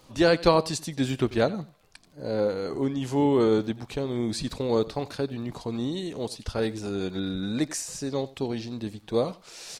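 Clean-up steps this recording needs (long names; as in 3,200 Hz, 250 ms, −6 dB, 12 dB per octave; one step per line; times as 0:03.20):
click removal
echo removal 90 ms −19.5 dB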